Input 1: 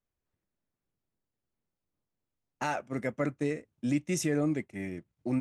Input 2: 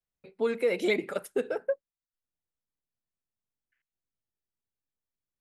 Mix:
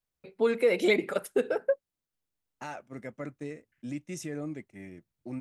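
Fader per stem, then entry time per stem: -8.0 dB, +2.5 dB; 0.00 s, 0.00 s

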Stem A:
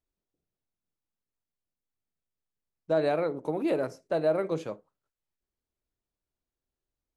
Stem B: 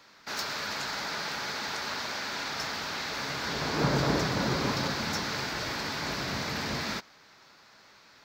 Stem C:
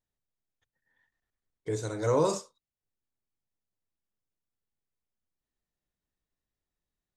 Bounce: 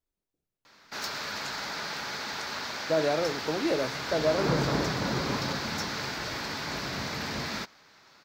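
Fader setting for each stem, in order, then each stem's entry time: -0.5 dB, -1.0 dB, mute; 0.00 s, 0.65 s, mute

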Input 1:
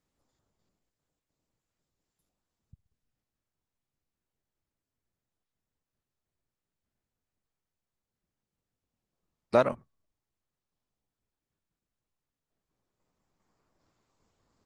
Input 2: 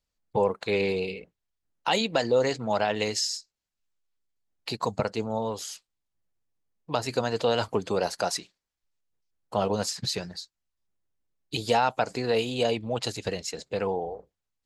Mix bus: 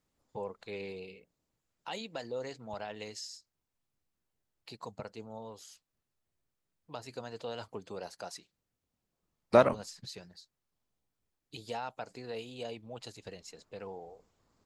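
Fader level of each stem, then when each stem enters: +1.0 dB, -15.5 dB; 0.00 s, 0.00 s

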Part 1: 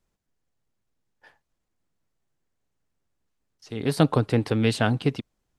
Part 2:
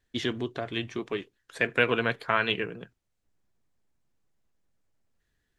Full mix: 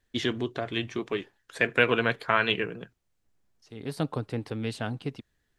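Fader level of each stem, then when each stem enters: -10.0 dB, +1.5 dB; 0.00 s, 0.00 s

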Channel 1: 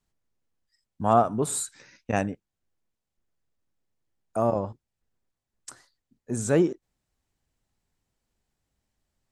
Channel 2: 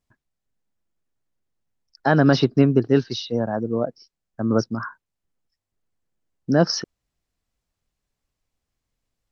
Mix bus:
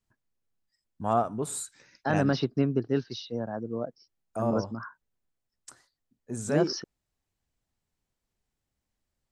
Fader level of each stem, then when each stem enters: -5.5 dB, -9.5 dB; 0.00 s, 0.00 s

